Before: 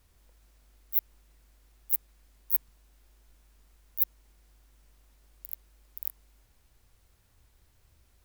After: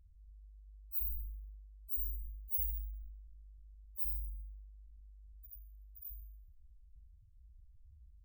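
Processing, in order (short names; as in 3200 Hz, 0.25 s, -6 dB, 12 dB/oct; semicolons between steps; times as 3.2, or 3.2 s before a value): loudest bins only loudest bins 2; Schroeder reverb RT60 0.7 s, combs from 31 ms, DRR 14 dB; sustainer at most 31 dB/s; gain +6.5 dB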